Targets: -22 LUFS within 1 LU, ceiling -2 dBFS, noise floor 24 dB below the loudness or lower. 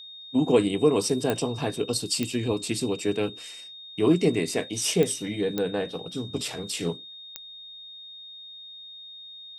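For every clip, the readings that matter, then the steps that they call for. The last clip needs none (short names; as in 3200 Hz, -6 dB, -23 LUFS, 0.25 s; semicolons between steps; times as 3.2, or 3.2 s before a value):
clicks 5; steady tone 3700 Hz; tone level -41 dBFS; loudness -26.0 LUFS; peak -8.5 dBFS; loudness target -22.0 LUFS
-> de-click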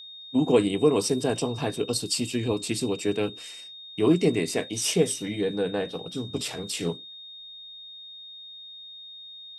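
clicks 0; steady tone 3700 Hz; tone level -41 dBFS
-> notch 3700 Hz, Q 30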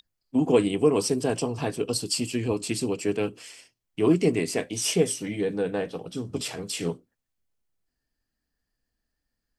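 steady tone none; loudness -26.5 LUFS; peak -8.5 dBFS; loudness target -22.0 LUFS
-> gain +4.5 dB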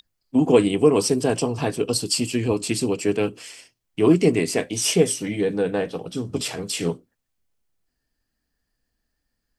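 loudness -22.0 LUFS; peak -4.0 dBFS; noise floor -78 dBFS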